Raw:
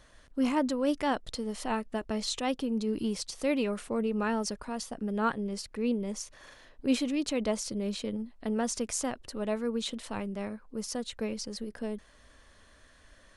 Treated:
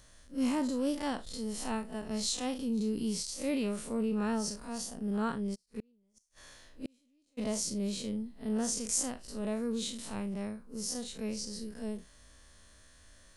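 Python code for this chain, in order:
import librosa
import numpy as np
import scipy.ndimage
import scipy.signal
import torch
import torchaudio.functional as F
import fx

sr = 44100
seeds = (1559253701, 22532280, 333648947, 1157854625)

y = fx.spec_blur(x, sr, span_ms=92.0)
y = fx.bass_treble(y, sr, bass_db=5, treble_db=11)
y = fx.gate_flip(y, sr, shuts_db=-25.0, range_db=-38, at=(5.54, 7.37), fade=0.02)
y = F.gain(torch.from_numpy(y), -3.0).numpy()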